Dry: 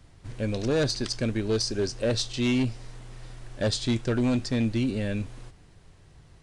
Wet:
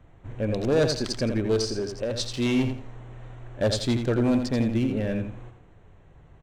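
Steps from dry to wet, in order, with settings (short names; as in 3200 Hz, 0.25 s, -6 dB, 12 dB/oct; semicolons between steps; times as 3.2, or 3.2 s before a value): Wiener smoothing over 9 samples; bell 620 Hz +4 dB 1.6 oct; 1.58–2.2 compressor 4:1, threshold -27 dBFS, peak gain reduction 7.5 dB; feedback echo 84 ms, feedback 25%, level -7 dB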